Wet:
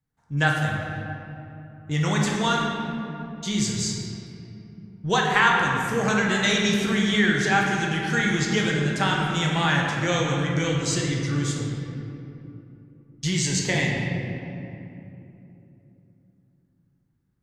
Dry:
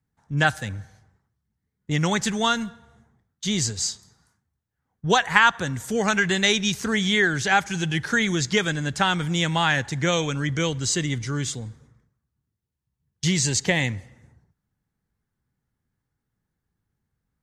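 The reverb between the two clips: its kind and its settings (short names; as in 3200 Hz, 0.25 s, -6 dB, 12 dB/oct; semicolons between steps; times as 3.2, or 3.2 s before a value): shoebox room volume 130 m³, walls hard, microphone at 0.53 m; gain -4.5 dB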